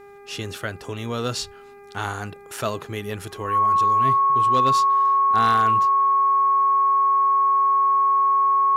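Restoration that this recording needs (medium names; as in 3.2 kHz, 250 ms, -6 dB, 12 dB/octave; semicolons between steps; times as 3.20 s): clip repair -11.5 dBFS; de-hum 402.9 Hz, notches 6; band-stop 1.1 kHz, Q 30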